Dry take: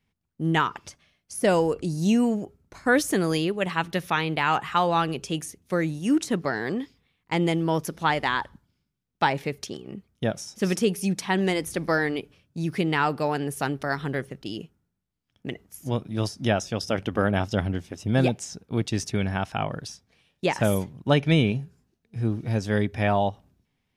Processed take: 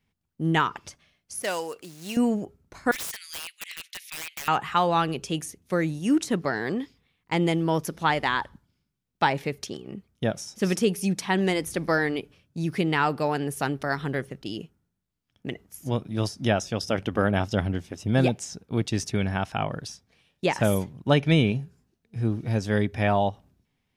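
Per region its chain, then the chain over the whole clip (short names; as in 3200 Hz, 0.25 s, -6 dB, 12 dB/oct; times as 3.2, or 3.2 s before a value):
1.42–2.17 median filter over 9 samples + HPF 1500 Hz 6 dB/oct + high shelf 4600 Hz +7.5 dB
2.91–4.48 Chebyshev high-pass 2100 Hz, order 4 + wrapped overs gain 27.5 dB
whole clip: dry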